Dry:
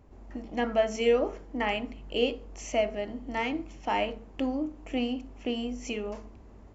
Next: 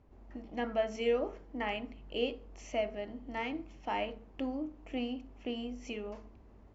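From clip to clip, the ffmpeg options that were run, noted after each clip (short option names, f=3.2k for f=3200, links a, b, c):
-af "lowpass=5.2k,volume=-6.5dB"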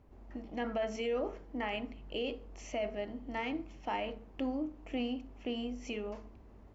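-af "alimiter=level_in=4dB:limit=-24dB:level=0:latency=1:release=19,volume=-4dB,volume=1.5dB"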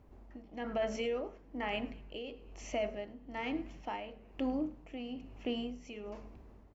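-filter_complex "[0:a]asplit=5[a][b][c][d][e];[b]adelay=105,afreqshift=-72,volume=-22dB[f];[c]adelay=210,afreqshift=-144,volume=-27.7dB[g];[d]adelay=315,afreqshift=-216,volume=-33.4dB[h];[e]adelay=420,afreqshift=-288,volume=-39dB[i];[a][f][g][h][i]amix=inputs=5:normalize=0,tremolo=f=1.1:d=0.66,volume=1.5dB"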